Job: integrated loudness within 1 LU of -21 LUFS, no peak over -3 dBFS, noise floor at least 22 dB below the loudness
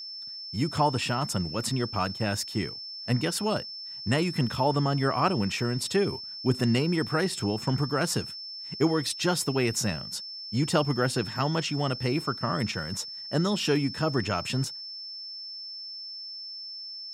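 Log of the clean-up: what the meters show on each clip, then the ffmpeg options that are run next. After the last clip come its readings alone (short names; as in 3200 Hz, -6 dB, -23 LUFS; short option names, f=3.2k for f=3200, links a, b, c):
steady tone 5300 Hz; tone level -37 dBFS; loudness -28.5 LUFS; peak -11.0 dBFS; loudness target -21.0 LUFS
-> -af "bandreject=f=5.3k:w=30"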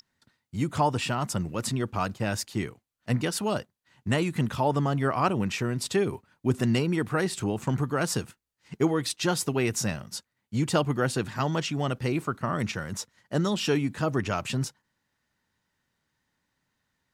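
steady tone none; loudness -28.0 LUFS; peak -11.0 dBFS; loudness target -21.0 LUFS
-> -af "volume=7dB"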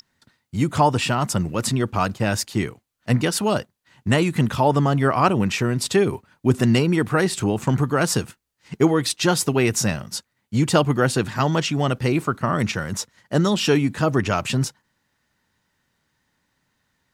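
loudness -21.0 LUFS; peak -4.0 dBFS; noise floor -73 dBFS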